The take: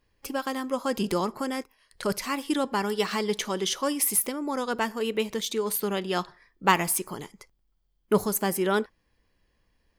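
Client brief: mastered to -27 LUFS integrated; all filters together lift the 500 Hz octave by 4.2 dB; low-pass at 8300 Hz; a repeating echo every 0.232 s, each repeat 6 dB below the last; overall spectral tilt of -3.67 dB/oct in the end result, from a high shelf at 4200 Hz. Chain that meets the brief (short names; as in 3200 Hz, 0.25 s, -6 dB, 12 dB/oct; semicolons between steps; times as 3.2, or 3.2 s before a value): LPF 8300 Hz; bell 500 Hz +5 dB; high shelf 4200 Hz +8 dB; feedback echo 0.232 s, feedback 50%, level -6 dB; gain -2.5 dB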